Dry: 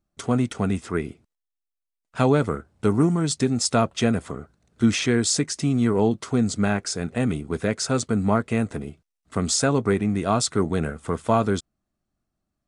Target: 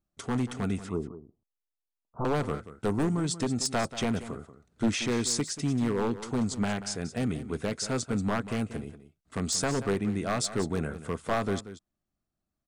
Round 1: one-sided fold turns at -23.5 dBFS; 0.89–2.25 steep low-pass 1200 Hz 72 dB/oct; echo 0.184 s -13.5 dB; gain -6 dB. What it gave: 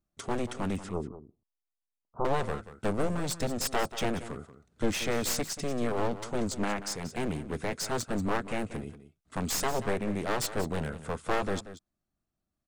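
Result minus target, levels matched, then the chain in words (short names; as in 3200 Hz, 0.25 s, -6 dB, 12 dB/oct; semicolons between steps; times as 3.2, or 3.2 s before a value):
one-sided fold: distortion +15 dB
one-sided fold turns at -14.5 dBFS; 0.89–2.25 steep low-pass 1200 Hz 72 dB/oct; echo 0.184 s -13.5 dB; gain -6 dB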